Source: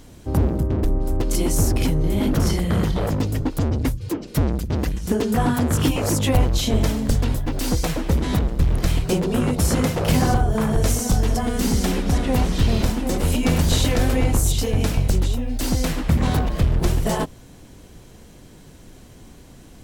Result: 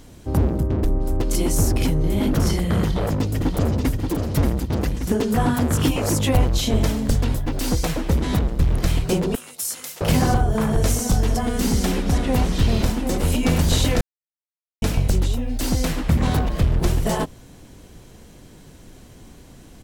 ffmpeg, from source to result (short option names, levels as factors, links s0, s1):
-filter_complex "[0:a]asplit=2[s0][s1];[s1]afade=t=in:st=2.82:d=0.01,afade=t=out:st=3.94:d=0.01,aecho=0:1:580|1160|1740|2320|2900|3480|4060:0.562341|0.309288|0.170108|0.0935595|0.0514577|0.0283018|0.015566[s2];[s0][s2]amix=inputs=2:normalize=0,asettb=1/sr,asplit=3[s3][s4][s5];[s3]atrim=end=9.354[s6];[s4]atrim=start=9.35:end=10.01,asetpts=PTS-STARTPTS,afade=t=in:d=0.004:c=qsin,afade=t=out:st=0.656:d=0.004:c=qsin,aderivative[s7];[s5]atrim=start=10.006[s8];[s6][s7]acrossfade=d=0.004:c1=hsin:c2=qsin[s9];[s9][s8]acrossfade=d=0.004:c1=qsin:c2=hsin,asplit=3[s10][s11][s12];[s10]atrim=end=14.01,asetpts=PTS-STARTPTS,afade=t=out:st=14.006:d=0.004:c=hsin[s13];[s11]atrim=start=14.01:end=14.82,asetpts=PTS-STARTPTS,volume=0[s14];[s12]atrim=start=14.82,asetpts=PTS-STARTPTS,afade=t=in:d=0.004:c=hsin[s15];[s13][s14][s15]concat=n=3:v=0:a=1"